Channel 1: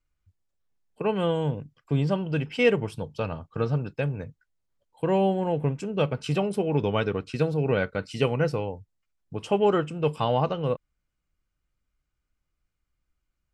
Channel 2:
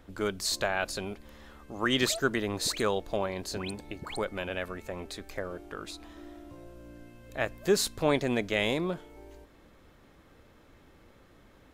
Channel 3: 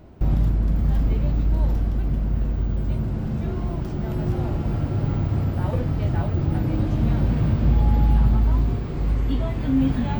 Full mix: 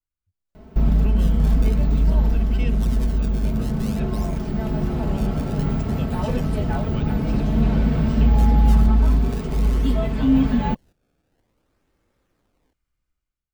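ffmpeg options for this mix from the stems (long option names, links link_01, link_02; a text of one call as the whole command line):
ffmpeg -i stem1.wav -i stem2.wav -i stem3.wav -filter_complex "[0:a]dynaudnorm=framelen=140:gausssize=7:maxgain=15dB,volume=-14dB,asplit=2[link_01][link_02];[1:a]acrusher=samples=25:mix=1:aa=0.000001:lfo=1:lforange=40:lforate=0.52,adelay=1000,volume=-2dB[link_03];[2:a]aecho=1:1:4.6:0.74,adelay=550,volume=1dB[link_04];[link_02]apad=whole_len=561410[link_05];[link_03][link_05]sidechaingate=range=-10dB:threshold=-51dB:ratio=16:detection=peak[link_06];[link_01][link_06]amix=inputs=2:normalize=0,acrossover=split=220|3000[link_07][link_08][link_09];[link_08]acompressor=threshold=-43dB:ratio=2.5[link_10];[link_07][link_10][link_09]amix=inputs=3:normalize=0,alimiter=limit=-23dB:level=0:latency=1:release=368,volume=0dB[link_11];[link_04][link_11]amix=inputs=2:normalize=0" out.wav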